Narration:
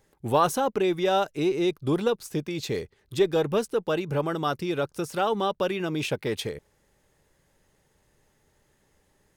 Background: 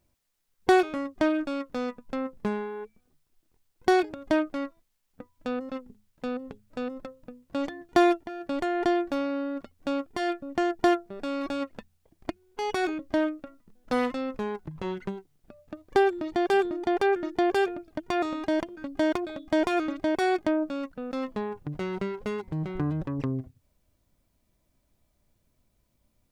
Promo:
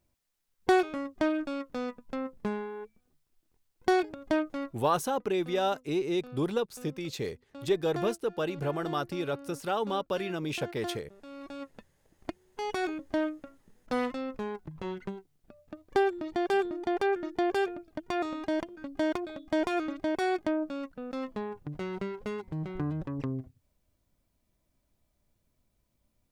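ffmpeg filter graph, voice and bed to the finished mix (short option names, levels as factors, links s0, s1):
-filter_complex "[0:a]adelay=4500,volume=0.562[s0];[1:a]volume=2.66,afade=t=out:st=4.85:d=0.27:silence=0.237137,afade=t=in:st=11.26:d=1.04:silence=0.251189[s1];[s0][s1]amix=inputs=2:normalize=0"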